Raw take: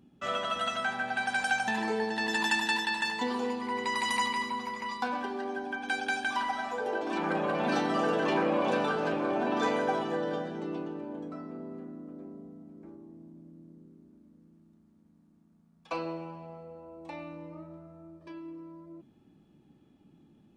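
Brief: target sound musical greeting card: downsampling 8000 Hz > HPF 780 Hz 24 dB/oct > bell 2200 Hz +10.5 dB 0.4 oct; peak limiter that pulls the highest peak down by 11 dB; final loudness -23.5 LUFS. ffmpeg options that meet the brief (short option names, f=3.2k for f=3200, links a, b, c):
-af "alimiter=level_in=3dB:limit=-24dB:level=0:latency=1,volume=-3dB,aresample=8000,aresample=44100,highpass=f=780:w=0.5412,highpass=f=780:w=1.3066,equalizer=f=2.2k:t=o:w=0.4:g=10.5,volume=11.5dB"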